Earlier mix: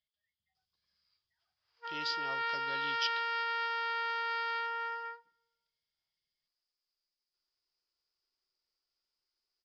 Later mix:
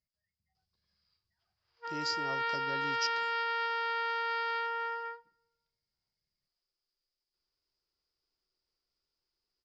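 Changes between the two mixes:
speech: remove synth low-pass 3300 Hz, resonance Q 9.1; master: add low shelf 480 Hz +10.5 dB

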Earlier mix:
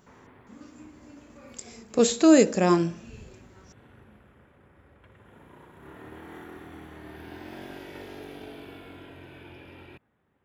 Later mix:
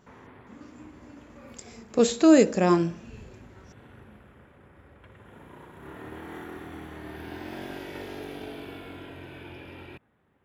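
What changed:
speech: add high shelf 6000 Hz -7 dB; background +3.5 dB

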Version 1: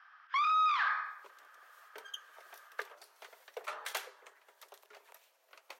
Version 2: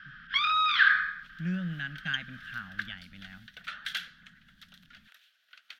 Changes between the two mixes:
speech: unmuted; first sound +5.5 dB; master: add EQ curve 120 Hz 0 dB, 180 Hz +12 dB, 260 Hz +1 dB, 420 Hz -26 dB, 680 Hz -16 dB, 1000 Hz -21 dB, 1500 Hz +9 dB, 2300 Hz +1 dB, 3300 Hz +11 dB, 7500 Hz -8 dB

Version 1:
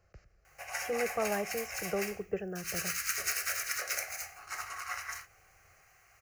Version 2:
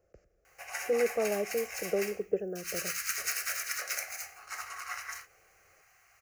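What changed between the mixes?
speech: add graphic EQ 125/250/500/1000/2000/4000 Hz -4/+8/+10/-9/-5/-11 dB; master: add low shelf 430 Hz -7.5 dB

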